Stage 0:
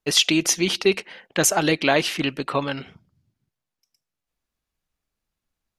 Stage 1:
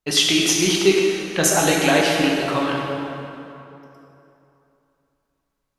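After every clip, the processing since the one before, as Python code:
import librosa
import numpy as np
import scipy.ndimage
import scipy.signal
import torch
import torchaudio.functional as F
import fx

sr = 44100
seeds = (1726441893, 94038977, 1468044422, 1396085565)

y = fx.rev_plate(x, sr, seeds[0], rt60_s=3.0, hf_ratio=0.65, predelay_ms=0, drr_db=-2.5)
y = y * 10.0 ** (-1.0 / 20.0)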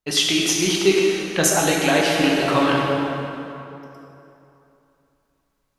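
y = fx.rider(x, sr, range_db=5, speed_s=0.5)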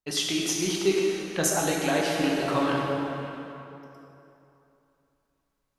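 y = fx.dynamic_eq(x, sr, hz=2700.0, q=1.1, threshold_db=-35.0, ratio=4.0, max_db=-4)
y = y * 10.0 ** (-6.5 / 20.0)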